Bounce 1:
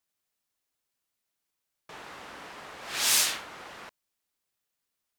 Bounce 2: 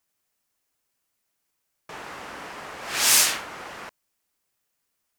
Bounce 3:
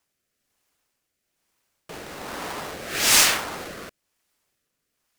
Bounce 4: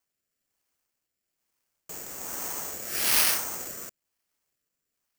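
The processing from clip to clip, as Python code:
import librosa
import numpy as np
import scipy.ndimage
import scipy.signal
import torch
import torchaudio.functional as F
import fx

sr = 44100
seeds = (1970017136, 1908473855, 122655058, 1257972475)

y1 = fx.peak_eq(x, sr, hz=3700.0, db=-4.0, octaves=0.57)
y1 = y1 * 10.0 ** (6.5 / 20.0)
y2 = fx.halfwave_hold(y1, sr)
y2 = fx.rotary(y2, sr, hz=1.1)
y2 = y2 * 10.0 ** (2.0 / 20.0)
y3 = (np.kron(scipy.signal.resample_poly(y2, 1, 6), np.eye(6)[0]) * 6)[:len(y2)]
y3 = y3 * 10.0 ** (-8.5 / 20.0)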